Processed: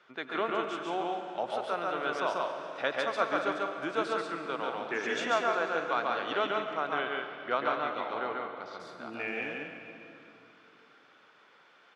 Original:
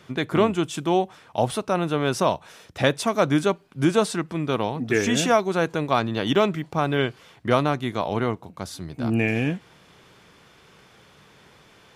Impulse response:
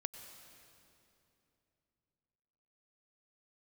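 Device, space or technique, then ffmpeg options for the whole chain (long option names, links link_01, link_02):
station announcement: -filter_complex "[0:a]highpass=460,lowpass=3900,equalizer=frequency=1400:width_type=o:width=0.32:gain=8,aecho=1:1:139.9|186.6:0.794|0.355[link_01];[1:a]atrim=start_sample=2205[link_02];[link_01][link_02]afir=irnorm=-1:irlink=0,asettb=1/sr,asplit=3[link_03][link_04][link_05];[link_03]atrim=end=6.984[link_06];[link_04]atrim=start=6.98:end=8.8,asetpts=PTS-STARTPTS,afade=type=in:duration=0.004:curve=qsin,afade=type=out:start_time=1.816:duration=0.004:curve=qsin,lowpass=frequency=5400:width=0.5412,lowpass=frequency=5400:width=1.3066[link_07];[link_05]atrim=start=8.796[link_08];[link_06][link_07]acrossfade=duration=0.004:curve1=hsin:curve2=qsin[link_09];[link_09][link_08]acrossfade=duration=0.004:curve1=qsin:curve2=hsin,volume=-7.5dB"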